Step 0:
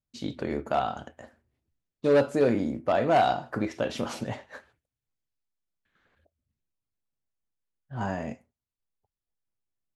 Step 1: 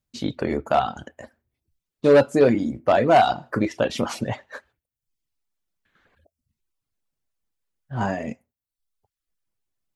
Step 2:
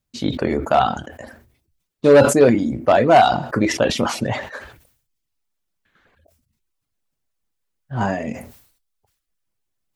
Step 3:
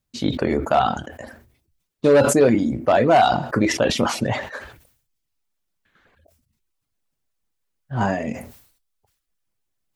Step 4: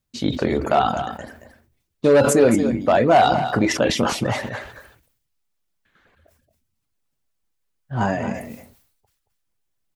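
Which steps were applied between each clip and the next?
reverb reduction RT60 0.67 s; level +7 dB
level that may fall only so fast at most 90 dB per second; level +3.5 dB
brickwall limiter −7 dBFS, peak gain reduction 5.5 dB
single-tap delay 225 ms −10 dB

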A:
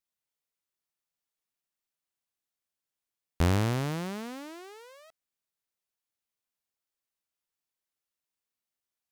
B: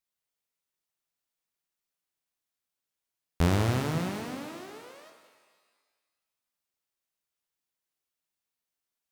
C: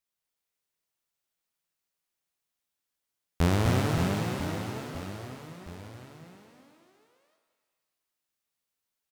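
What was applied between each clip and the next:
reverb with rising layers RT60 1.5 s, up +12 semitones, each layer −8 dB, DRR 5 dB
reverse bouncing-ball delay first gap 250 ms, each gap 1.3×, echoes 5

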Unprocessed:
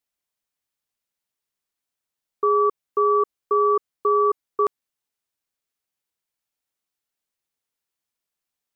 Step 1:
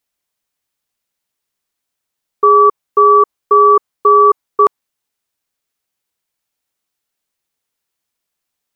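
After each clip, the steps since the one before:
dynamic equaliser 980 Hz, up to +6 dB, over −34 dBFS, Q 1.5
level +7.5 dB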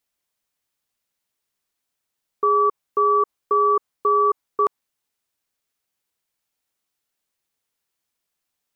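brickwall limiter −9 dBFS, peak gain reduction 7.5 dB
level −2.5 dB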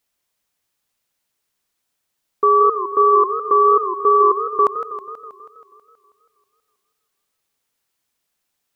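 feedback echo with a swinging delay time 161 ms, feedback 63%, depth 188 cents, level −11 dB
level +4.5 dB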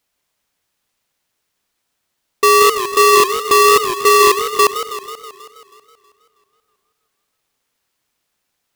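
each half-wave held at its own peak

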